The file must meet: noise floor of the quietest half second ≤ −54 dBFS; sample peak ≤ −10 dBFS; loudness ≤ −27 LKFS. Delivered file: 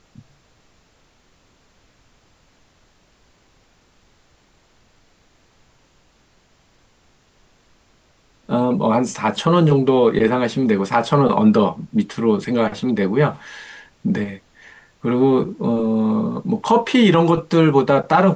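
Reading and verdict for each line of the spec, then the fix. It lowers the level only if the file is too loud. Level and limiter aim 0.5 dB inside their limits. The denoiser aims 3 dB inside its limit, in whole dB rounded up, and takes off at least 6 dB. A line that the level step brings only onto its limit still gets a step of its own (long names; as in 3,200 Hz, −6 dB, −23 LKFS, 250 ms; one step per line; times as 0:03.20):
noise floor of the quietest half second −57 dBFS: in spec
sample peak −4.0 dBFS: out of spec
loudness −17.5 LKFS: out of spec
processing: level −10 dB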